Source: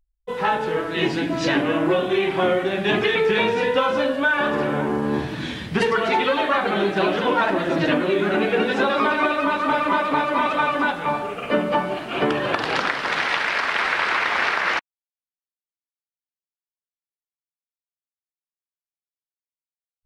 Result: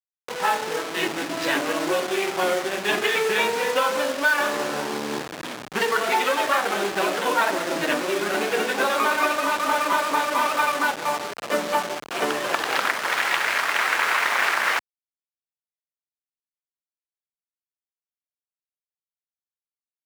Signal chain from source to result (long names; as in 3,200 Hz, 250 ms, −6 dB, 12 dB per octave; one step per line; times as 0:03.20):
hold until the input has moved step −23 dBFS
meter weighting curve A